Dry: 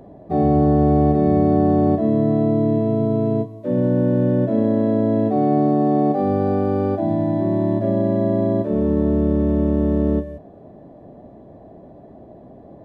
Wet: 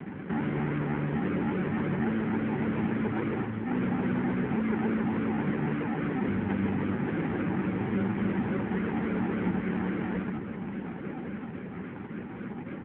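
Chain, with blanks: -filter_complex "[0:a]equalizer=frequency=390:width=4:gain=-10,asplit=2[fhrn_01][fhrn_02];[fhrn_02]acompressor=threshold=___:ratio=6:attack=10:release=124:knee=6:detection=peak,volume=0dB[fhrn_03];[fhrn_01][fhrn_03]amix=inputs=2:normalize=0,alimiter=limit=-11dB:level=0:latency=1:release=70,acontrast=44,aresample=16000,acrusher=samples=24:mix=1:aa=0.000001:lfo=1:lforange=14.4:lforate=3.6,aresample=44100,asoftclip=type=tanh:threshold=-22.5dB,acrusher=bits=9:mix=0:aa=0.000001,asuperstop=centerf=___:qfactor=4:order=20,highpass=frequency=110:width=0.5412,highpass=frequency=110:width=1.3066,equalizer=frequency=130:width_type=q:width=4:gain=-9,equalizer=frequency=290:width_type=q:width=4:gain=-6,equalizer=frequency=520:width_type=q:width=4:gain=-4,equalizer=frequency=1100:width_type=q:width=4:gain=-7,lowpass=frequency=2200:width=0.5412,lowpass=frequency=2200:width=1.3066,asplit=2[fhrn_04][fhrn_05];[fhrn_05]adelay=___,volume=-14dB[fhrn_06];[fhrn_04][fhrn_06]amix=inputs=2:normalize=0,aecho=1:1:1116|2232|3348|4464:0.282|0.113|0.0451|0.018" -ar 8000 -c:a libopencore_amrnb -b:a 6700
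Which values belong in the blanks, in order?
-34dB, 650, 21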